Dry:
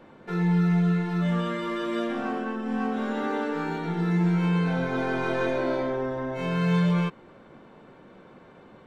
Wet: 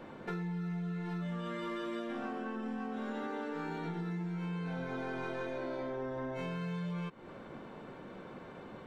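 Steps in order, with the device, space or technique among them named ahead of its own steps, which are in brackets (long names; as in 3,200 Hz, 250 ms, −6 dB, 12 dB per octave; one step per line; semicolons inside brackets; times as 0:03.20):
serial compression, leveller first (downward compressor 2.5 to 1, threshold −27 dBFS, peak gain reduction 5.5 dB; downward compressor 5 to 1, threshold −39 dBFS, peak gain reduction 13 dB)
level +2 dB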